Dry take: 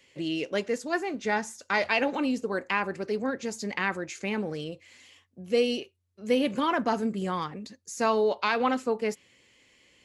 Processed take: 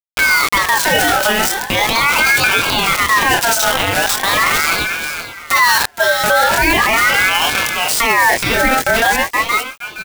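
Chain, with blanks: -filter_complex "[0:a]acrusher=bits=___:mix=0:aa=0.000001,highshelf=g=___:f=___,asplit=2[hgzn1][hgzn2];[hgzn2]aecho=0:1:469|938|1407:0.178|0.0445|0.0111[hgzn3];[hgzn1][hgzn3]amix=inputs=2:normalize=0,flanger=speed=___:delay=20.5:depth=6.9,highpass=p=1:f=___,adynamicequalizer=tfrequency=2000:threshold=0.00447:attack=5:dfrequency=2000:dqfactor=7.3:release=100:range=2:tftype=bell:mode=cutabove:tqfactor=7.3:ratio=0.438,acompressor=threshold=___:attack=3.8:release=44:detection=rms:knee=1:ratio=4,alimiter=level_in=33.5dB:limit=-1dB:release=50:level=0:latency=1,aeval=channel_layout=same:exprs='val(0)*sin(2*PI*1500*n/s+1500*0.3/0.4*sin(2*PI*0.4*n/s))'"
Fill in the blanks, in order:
5, 5, 8600, 0.43, 230, -39dB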